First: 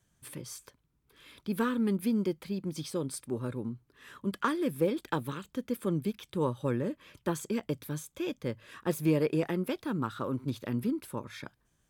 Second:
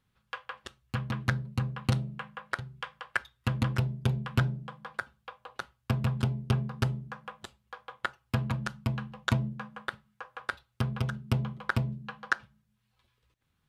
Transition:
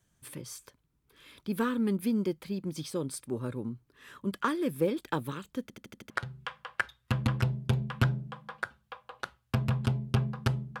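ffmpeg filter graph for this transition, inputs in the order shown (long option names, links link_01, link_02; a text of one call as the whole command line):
ffmpeg -i cue0.wav -i cue1.wav -filter_complex "[0:a]apad=whole_dur=10.8,atrim=end=10.8,asplit=6[link_01][link_02][link_03][link_04][link_05][link_06];[link_01]atrim=end=5.702[link_07];[link_02]atrim=start=5.618:end=5.702[link_08];[link_03]atrim=start=5.618:end=5.702[link_09];[link_04]atrim=start=5.618:end=5.702[link_10];[link_05]atrim=start=5.618:end=5.702[link_11];[link_06]atrim=start=5.618:end=5.702[link_12];[1:a]atrim=start=2.458:end=7.16[link_13];[link_07][link_08]acrossfade=duration=0.004:curve1=hsin:curve2=hsin[link_14];[link_14][link_09]acrossfade=duration=0.004:curve1=hsin:curve2=hsin[link_15];[link_15][link_10]acrossfade=duration=0.004:curve1=hsin:curve2=hsin[link_16];[link_16][link_11]acrossfade=duration=0.004:curve1=hsin:curve2=hsin[link_17];[link_17][link_12]acrossfade=duration=0.004:curve1=hsin:curve2=hsin[link_18];[link_18][link_13]acrossfade=duration=0.004:curve1=hsin:curve2=hsin" out.wav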